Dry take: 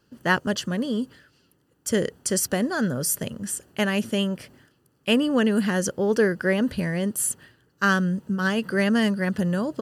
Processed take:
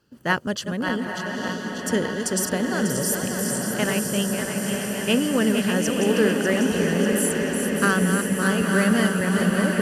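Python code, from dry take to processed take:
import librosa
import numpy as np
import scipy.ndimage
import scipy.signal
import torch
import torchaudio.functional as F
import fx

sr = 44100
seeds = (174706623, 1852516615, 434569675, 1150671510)

y = fx.reverse_delay_fb(x, sr, ms=297, feedback_pct=80, wet_db=-6.5)
y = fx.echo_diffused(y, sr, ms=933, feedback_pct=62, wet_db=-5.0)
y = fx.cheby_harmonics(y, sr, harmonics=(3,), levels_db=(-26,), full_scale_db=-6.0)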